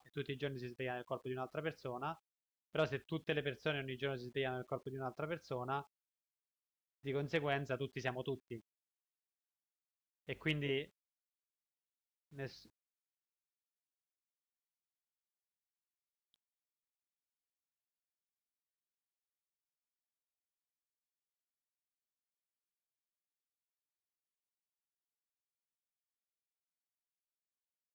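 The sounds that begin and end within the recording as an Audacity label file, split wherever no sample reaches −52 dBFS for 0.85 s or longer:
7.040000	8.600000	sound
10.280000	10.850000	sound
12.330000	12.620000	sound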